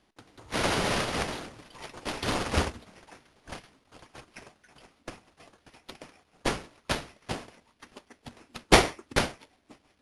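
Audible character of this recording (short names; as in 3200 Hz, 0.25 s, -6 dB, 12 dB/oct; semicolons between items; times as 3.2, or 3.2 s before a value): aliases and images of a low sample rate 7800 Hz, jitter 0%; AAC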